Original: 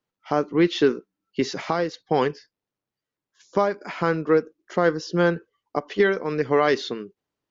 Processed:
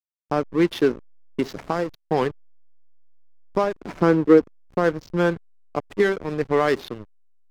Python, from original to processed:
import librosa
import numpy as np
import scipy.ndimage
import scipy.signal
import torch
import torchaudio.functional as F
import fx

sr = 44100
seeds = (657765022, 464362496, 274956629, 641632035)

y = fx.peak_eq(x, sr, hz=300.0, db=fx.line((3.75, 12.5), (4.76, 6.0)), octaves=1.4, at=(3.75, 4.76), fade=0.02)
y = fx.backlash(y, sr, play_db=-24.5)